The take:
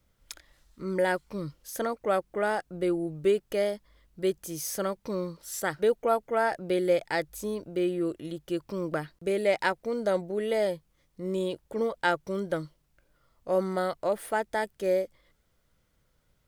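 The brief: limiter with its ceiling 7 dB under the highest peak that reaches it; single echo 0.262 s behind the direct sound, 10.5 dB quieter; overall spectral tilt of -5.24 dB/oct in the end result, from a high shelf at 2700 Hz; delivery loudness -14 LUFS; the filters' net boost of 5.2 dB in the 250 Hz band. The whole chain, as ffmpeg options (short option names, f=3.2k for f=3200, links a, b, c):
-af "equalizer=f=250:t=o:g=8.5,highshelf=f=2.7k:g=3.5,alimiter=limit=-16.5dB:level=0:latency=1,aecho=1:1:262:0.299,volume=14dB"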